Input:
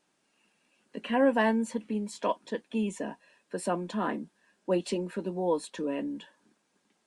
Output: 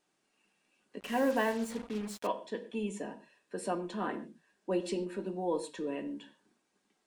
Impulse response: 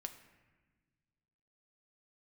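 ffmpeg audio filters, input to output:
-filter_complex "[1:a]atrim=start_sample=2205,afade=type=out:start_time=0.35:duration=0.01,atrim=end_sample=15876,asetrate=88200,aresample=44100[link_01];[0:a][link_01]afir=irnorm=-1:irlink=0,asettb=1/sr,asplit=3[link_02][link_03][link_04];[link_02]atrim=end=1.004[link_05];[link_03]atrim=start=1:end=2.27,asetpts=PTS-STARTPTS,afade=type=in:duration=0.004:curve=qsin,afade=type=out:start_time=1.266:duration=0.004:curve=qsin,acrusher=bits=7:mix=0:aa=0.5[link_06];[link_04]atrim=start=2.266[link_07];[link_05][link_06]acrossfade=duration=0.004:curve1=hsin:curve2=qsin[link_08];[link_08][link_07]acrossfade=duration=0.004:curve1=qsin:curve2=hsin,volume=5.5dB"

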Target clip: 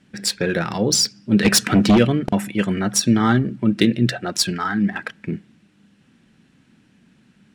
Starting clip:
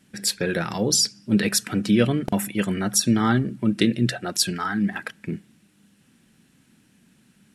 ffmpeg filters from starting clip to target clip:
ffmpeg -i in.wav -filter_complex "[0:a]adynamicsmooth=sensitivity=2.5:basefreq=5500,asplit=3[link_01][link_02][link_03];[link_01]afade=type=out:start_time=1.44:duration=0.02[link_04];[link_02]aeval=exprs='0.355*(cos(1*acos(clip(val(0)/0.355,-1,1)))-cos(1*PI/2))+0.112*(cos(5*acos(clip(val(0)/0.355,-1,1)))-cos(5*PI/2))':channel_layout=same,afade=type=in:start_time=1.44:duration=0.02,afade=type=out:start_time=1.97:duration=0.02[link_05];[link_03]afade=type=in:start_time=1.97:duration=0.02[link_06];[link_04][link_05][link_06]amix=inputs=3:normalize=0,volume=3.5dB" out.wav

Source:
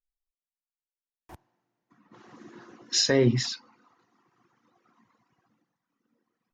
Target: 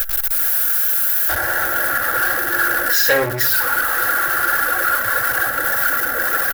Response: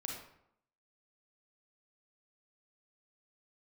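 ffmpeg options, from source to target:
-filter_complex "[0:a]aeval=exprs='val(0)+0.5*0.0447*sgn(val(0))':channel_layout=same,asplit=2[link_01][link_02];[1:a]atrim=start_sample=2205[link_03];[link_02][link_03]afir=irnorm=-1:irlink=0,volume=-6.5dB[link_04];[link_01][link_04]amix=inputs=2:normalize=0,crystalizer=i=1:c=0,firequalizer=gain_entry='entry(110,0);entry(200,-28);entry(440,-9);entry(710,-9);entry(1000,-23);entry(1500,4);entry(2300,-25);entry(4500,-24);entry(6800,-24);entry(12000,-4)':delay=0.05:min_phase=1,asoftclip=type=tanh:threshold=-28dB,aecho=1:1:3.6:0.52,asplit=2[link_05][link_06];[link_06]highpass=frequency=720:poles=1,volume=20dB,asoftclip=type=tanh:threshold=-7.5dB[link_07];[link_05][link_07]amix=inputs=2:normalize=0,lowpass=frequency=4300:poles=1,volume=-6dB,highshelf=frequency=4700:gain=7,volume=7dB"

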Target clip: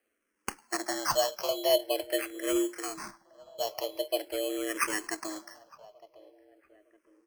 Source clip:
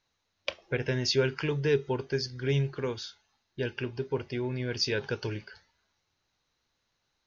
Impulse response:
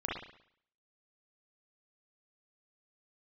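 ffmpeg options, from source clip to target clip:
-filter_complex "[0:a]afreqshift=210,acrusher=samples=12:mix=1:aa=0.000001,bass=frequency=250:gain=-7,treble=frequency=4000:gain=5,asplit=2[link_01][link_02];[link_02]adelay=910,lowpass=frequency=1300:poles=1,volume=-20dB,asplit=2[link_03][link_04];[link_04]adelay=910,lowpass=frequency=1300:poles=1,volume=0.5,asplit=2[link_05][link_06];[link_06]adelay=910,lowpass=frequency=1300:poles=1,volume=0.5,asplit=2[link_07][link_08];[link_08]adelay=910,lowpass=frequency=1300:poles=1,volume=0.5[link_09];[link_03][link_05][link_07][link_09]amix=inputs=4:normalize=0[link_10];[link_01][link_10]amix=inputs=2:normalize=0,asplit=2[link_11][link_12];[link_12]afreqshift=-0.45[link_13];[link_11][link_13]amix=inputs=2:normalize=1,volume=1.5dB"

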